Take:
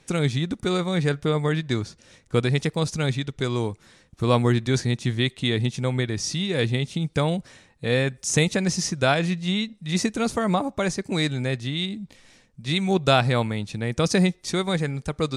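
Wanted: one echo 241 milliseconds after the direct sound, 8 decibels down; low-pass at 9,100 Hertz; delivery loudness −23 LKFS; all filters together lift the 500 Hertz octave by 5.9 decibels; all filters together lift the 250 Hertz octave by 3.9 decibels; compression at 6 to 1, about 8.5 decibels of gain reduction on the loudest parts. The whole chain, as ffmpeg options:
ffmpeg -i in.wav -af "lowpass=9100,equalizer=frequency=250:width_type=o:gain=4,equalizer=frequency=500:width_type=o:gain=6,acompressor=threshold=-20dB:ratio=6,aecho=1:1:241:0.398,volume=2.5dB" out.wav

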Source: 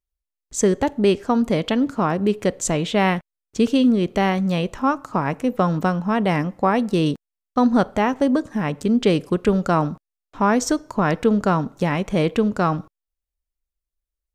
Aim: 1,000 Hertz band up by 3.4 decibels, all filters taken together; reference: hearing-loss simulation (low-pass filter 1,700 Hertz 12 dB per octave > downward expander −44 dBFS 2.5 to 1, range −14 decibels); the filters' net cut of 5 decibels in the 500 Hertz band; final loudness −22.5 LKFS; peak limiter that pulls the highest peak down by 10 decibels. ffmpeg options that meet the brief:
ffmpeg -i in.wav -af "equalizer=frequency=500:width_type=o:gain=-8.5,equalizer=frequency=1000:width_type=o:gain=7.5,alimiter=limit=-14.5dB:level=0:latency=1,lowpass=1700,agate=range=-14dB:threshold=-44dB:ratio=2.5,volume=3dB" out.wav

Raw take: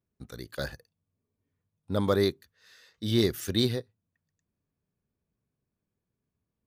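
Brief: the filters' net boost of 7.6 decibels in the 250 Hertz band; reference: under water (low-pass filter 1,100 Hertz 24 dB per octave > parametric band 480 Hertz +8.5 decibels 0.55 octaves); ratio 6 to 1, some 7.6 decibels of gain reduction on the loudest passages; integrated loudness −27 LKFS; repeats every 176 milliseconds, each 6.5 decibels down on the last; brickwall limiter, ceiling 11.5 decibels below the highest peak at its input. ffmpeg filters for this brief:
ffmpeg -i in.wav -af "equalizer=frequency=250:width_type=o:gain=8.5,acompressor=threshold=-23dB:ratio=6,alimiter=level_in=2dB:limit=-24dB:level=0:latency=1,volume=-2dB,lowpass=frequency=1100:width=0.5412,lowpass=frequency=1100:width=1.3066,equalizer=frequency=480:width_type=o:width=0.55:gain=8.5,aecho=1:1:176|352|528|704|880|1056:0.473|0.222|0.105|0.0491|0.0231|0.0109,volume=9.5dB" out.wav

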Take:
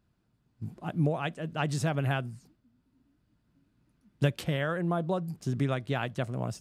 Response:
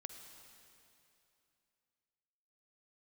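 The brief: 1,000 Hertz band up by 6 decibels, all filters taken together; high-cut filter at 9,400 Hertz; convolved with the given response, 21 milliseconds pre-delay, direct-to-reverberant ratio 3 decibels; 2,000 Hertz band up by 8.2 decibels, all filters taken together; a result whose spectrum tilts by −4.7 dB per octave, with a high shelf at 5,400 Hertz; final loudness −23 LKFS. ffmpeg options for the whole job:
-filter_complex "[0:a]lowpass=9400,equalizer=frequency=1000:width_type=o:gain=6,equalizer=frequency=2000:width_type=o:gain=8,highshelf=frequency=5400:gain=6,asplit=2[link_01][link_02];[1:a]atrim=start_sample=2205,adelay=21[link_03];[link_02][link_03]afir=irnorm=-1:irlink=0,volume=1dB[link_04];[link_01][link_04]amix=inputs=2:normalize=0,volume=4dB"

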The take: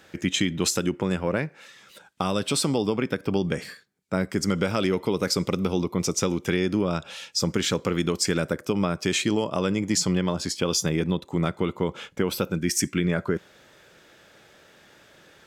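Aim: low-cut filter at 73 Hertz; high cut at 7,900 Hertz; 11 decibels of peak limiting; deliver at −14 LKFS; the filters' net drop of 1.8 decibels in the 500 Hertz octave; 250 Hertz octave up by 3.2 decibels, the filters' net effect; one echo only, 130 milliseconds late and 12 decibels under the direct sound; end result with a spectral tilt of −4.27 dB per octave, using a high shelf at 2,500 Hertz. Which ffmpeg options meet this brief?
ffmpeg -i in.wav -af "highpass=73,lowpass=7900,equalizer=frequency=250:width_type=o:gain=6,equalizer=frequency=500:width_type=o:gain=-5,highshelf=frequency=2500:gain=6,alimiter=limit=-17dB:level=0:latency=1,aecho=1:1:130:0.251,volume=13.5dB" out.wav

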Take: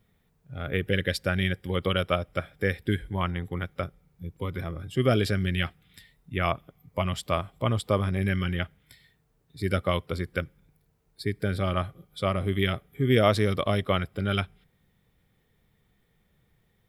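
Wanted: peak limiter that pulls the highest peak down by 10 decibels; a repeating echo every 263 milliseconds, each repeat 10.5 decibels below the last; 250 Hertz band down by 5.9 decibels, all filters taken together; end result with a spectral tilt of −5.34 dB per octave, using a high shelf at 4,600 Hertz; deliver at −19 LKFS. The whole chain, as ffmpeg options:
ffmpeg -i in.wav -af "equalizer=frequency=250:width_type=o:gain=-9,highshelf=frequency=4600:gain=4,alimiter=limit=-16.5dB:level=0:latency=1,aecho=1:1:263|526|789:0.299|0.0896|0.0269,volume=12.5dB" out.wav

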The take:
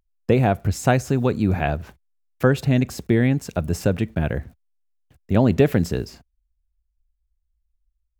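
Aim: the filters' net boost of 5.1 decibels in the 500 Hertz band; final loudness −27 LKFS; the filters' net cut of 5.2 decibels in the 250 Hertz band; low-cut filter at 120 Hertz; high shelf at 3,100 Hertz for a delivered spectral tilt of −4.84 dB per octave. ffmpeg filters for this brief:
ffmpeg -i in.wav -af "highpass=120,equalizer=frequency=250:width_type=o:gain=-9,equalizer=frequency=500:width_type=o:gain=9,highshelf=frequency=3100:gain=-6.5,volume=-6dB" out.wav

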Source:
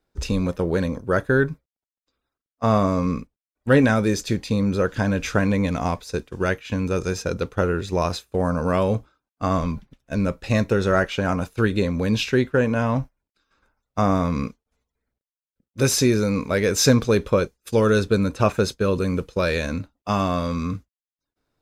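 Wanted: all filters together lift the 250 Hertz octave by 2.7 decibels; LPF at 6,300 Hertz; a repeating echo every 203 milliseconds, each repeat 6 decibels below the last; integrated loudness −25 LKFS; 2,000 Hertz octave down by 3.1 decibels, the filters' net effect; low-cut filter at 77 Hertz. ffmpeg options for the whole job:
ffmpeg -i in.wav -af "highpass=77,lowpass=6300,equalizer=frequency=250:width_type=o:gain=3.5,equalizer=frequency=2000:width_type=o:gain=-4.5,aecho=1:1:203|406|609|812|1015|1218:0.501|0.251|0.125|0.0626|0.0313|0.0157,volume=-4.5dB" out.wav

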